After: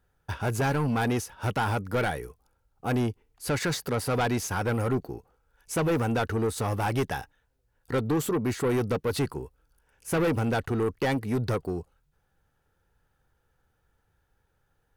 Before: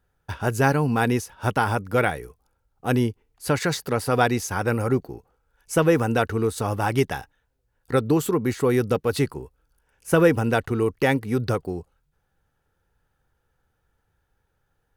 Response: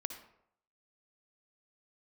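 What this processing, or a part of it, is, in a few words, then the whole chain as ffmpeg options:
saturation between pre-emphasis and de-emphasis: -af "highshelf=frequency=6200:gain=11,asoftclip=type=tanh:threshold=-21.5dB,highshelf=frequency=6200:gain=-11"

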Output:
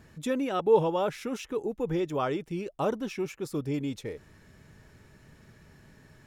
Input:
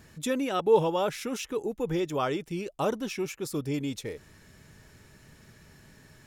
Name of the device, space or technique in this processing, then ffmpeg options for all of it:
behind a face mask: -af "highshelf=frequency=3000:gain=-8"

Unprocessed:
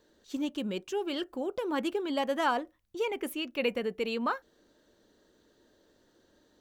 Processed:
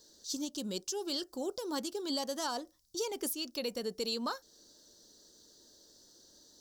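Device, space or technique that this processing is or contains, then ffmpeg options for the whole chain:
over-bright horn tweeter: -af "highshelf=frequency=3500:width_type=q:width=3:gain=13.5,alimiter=limit=-23dB:level=0:latency=1:release=315,volume=-2dB"

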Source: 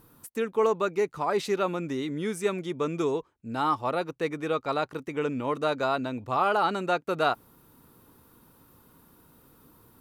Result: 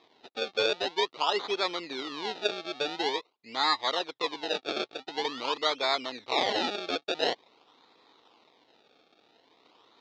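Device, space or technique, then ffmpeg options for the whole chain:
circuit-bent sampling toy: -af "acrusher=samples=30:mix=1:aa=0.000001:lfo=1:lforange=30:lforate=0.47,lowpass=frequency=7900:width=0.5412,lowpass=frequency=7900:width=1.3066,highpass=490,equalizer=frequency=580:width_type=q:width=4:gain=-5,equalizer=frequency=1600:width_type=q:width=4:gain=-9,equalizer=frequency=3800:width_type=q:width=4:gain=9,lowpass=frequency=5000:width=0.5412,lowpass=frequency=5000:width=1.3066,equalizer=frequency=170:width_type=o:width=0.84:gain=-4.5,volume=1.5dB"

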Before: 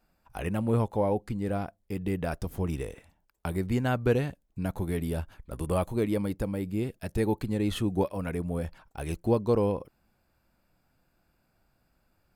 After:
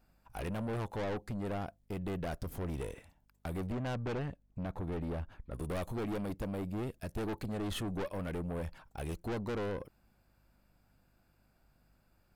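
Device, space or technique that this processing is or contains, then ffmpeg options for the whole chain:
valve amplifier with mains hum: -filter_complex "[0:a]asettb=1/sr,asplit=3[link_01][link_02][link_03];[link_01]atrim=end=3.724[link_04];[link_02]atrim=start=3.72:end=5.54,asetpts=PTS-STARTPTS,afade=type=in:duration=0.004:curve=qsin,afade=type=out:start_time=1.816:duration=0.004:curve=qsin,aemphasis=mode=reproduction:type=75kf[link_05];[link_03]atrim=start=5.536[link_06];[link_04][link_05]acrossfade=duration=0.004:curve1=hsin:curve2=qsin[link_07];[link_07][link_06]acrossfade=duration=0.004:curve1=qsin:curve2=hsin,aeval=exprs='(tanh(50.1*val(0)+0.35)-tanh(0.35))/50.1':channel_layout=same,aeval=exprs='val(0)+0.000282*(sin(2*PI*50*n/s)+sin(2*PI*2*50*n/s)/2+sin(2*PI*3*50*n/s)/3+sin(2*PI*4*50*n/s)/4+sin(2*PI*5*50*n/s)/5)':channel_layout=same"

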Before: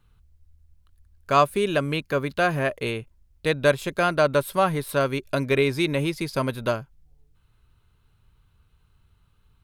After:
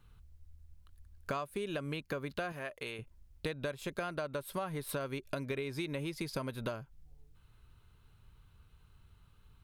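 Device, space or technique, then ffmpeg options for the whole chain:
serial compression, leveller first: -filter_complex "[0:a]acompressor=threshold=-24dB:ratio=2,acompressor=threshold=-35dB:ratio=6,asettb=1/sr,asplit=3[link_01][link_02][link_03];[link_01]atrim=end=2.524[link_04];[link_02]atrim=start=2.52:end=2.99,asetpts=PTS-STARTPTS,afade=type=in:duration=0.004:curve=qsin,afade=type=out:start_time=0.466:duration=0.004:curve=qsin,lowshelf=frequency=460:gain=-10.5[link_05];[link_03]atrim=start=2.986[link_06];[link_04][link_05]acrossfade=duration=0.004:curve1=hsin:curve2=qsin[link_07];[link_07][link_06]acrossfade=duration=0.004:curve1=qsin:curve2=hsin"

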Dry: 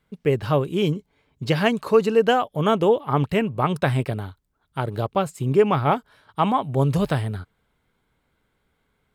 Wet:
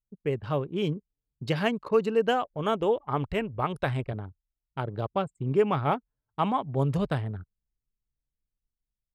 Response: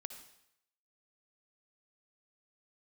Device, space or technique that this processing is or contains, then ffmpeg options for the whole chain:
voice memo with heavy noise removal: -filter_complex "[0:a]asplit=3[link_01][link_02][link_03];[link_01]afade=type=out:start_time=2.5:duration=0.02[link_04];[link_02]asubboost=boost=10.5:cutoff=53,afade=type=in:start_time=2.5:duration=0.02,afade=type=out:start_time=4.12:duration=0.02[link_05];[link_03]afade=type=in:start_time=4.12:duration=0.02[link_06];[link_04][link_05][link_06]amix=inputs=3:normalize=0,anlmdn=15.8,dynaudnorm=framelen=510:gausssize=3:maxgain=3dB,volume=-8.5dB"

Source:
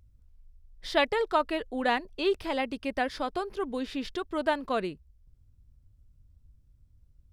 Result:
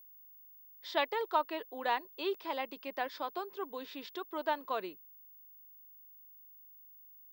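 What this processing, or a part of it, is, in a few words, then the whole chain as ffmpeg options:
old television with a line whistle: -af "highpass=frequency=230:width=0.5412,highpass=frequency=230:width=1.3066,equalizer=frequency=240:width_type=q:width=4:gain=-9,equalizer=frequency=990:width_type=q:width=4:gain=8,equalizer=frequency=3600:width_type=q:width=4:gain=3,lowpass=frequency=7100:width=0.5412,lowpass=frequency=7100:width=1.3066,aeval=exprs='val(0)+0.00501*sin(2*PI*15625*n/s)':channel_layout=same,volume=-8dB"

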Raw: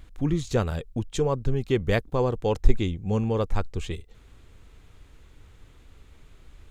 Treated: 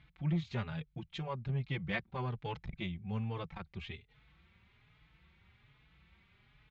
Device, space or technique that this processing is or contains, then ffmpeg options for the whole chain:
barber-pole flanger into a guitar amplifier: -filter_complex "[0:a]equalizer=frequency=530:width=0.8:gain=-8.5,asplit=2[link_01][link_02];[link_02]adelay=4.2,afreqshift=1.2[link_03];[link_01][link_03]amix=inputs=2:normalize=1,asoftclip=type=tanh:threshold=-22dB,highpass=91,equalizer=frequency=93:width_type=q:width=4:gain=-9,equalizer=frequency=160:width_type=q:width=4:gain=6,equalizer=frequency=280:width_type=q:width=4:gain=-10,equalizer=frequency=450:width_type=q:width=4:gain=-5,equalizer=frequency=820:width_type=q:width=4:gain=3,equalizer=frequency=2200:width_type=q:width=4:gain=6,lowpass=frequency=3900:width=0.5412,lowpass=frequency=3900:width=1.3066,volume=-3dB"

